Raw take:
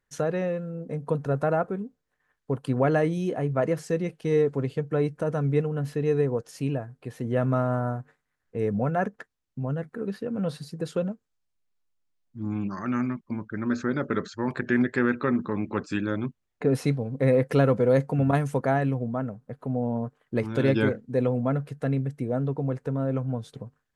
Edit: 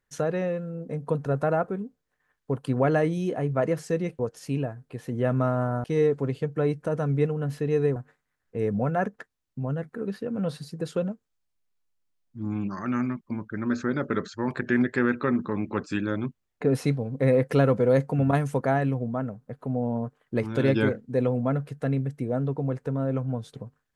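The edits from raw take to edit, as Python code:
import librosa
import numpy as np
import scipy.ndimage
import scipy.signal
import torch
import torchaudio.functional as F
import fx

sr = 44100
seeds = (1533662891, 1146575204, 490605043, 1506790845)

y = fx.edit(x, sr, fx.move(start_s=6.31, length_s=1.65, to_s=4.19), tone=tone)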